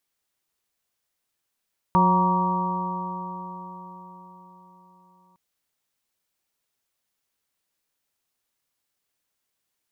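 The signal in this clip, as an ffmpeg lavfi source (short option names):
-f lavfi -i "aevalsrc='0.112*pow(10,-3*t/4.71)*sin(2*PI*180.33*t)+0.0376*pow(10,-3*t/4.71)*sin(2*PI*362.65*t)+0.0299*pow(10,-3*t/4.71)*sin(2*PI*548.92*t)+0.0188*pow(10,-3*t/4.71)*sin(2*PI*741.01*t)+0.15*pow(10,-3*t/4.71)*sin(2*PI*940.7*t)+0.0708*pow(10,-3*t/4.71)*sin(2*PI*1149.68*t)':d=3.41:s=44100"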